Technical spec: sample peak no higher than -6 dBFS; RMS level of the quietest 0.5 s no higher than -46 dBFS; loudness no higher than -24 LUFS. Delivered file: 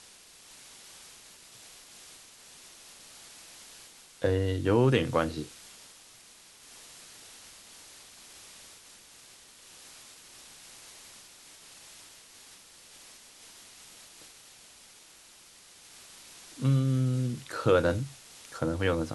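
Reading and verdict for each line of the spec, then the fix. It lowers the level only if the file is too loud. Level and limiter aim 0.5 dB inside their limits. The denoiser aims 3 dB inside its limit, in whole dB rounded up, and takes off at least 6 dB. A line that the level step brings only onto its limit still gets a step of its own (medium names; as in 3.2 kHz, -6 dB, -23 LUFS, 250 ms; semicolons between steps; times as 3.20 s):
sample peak -11.0 dBFS: pass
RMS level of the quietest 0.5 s -55 dBFS: pass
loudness -28.0 LUFS: pass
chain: none needed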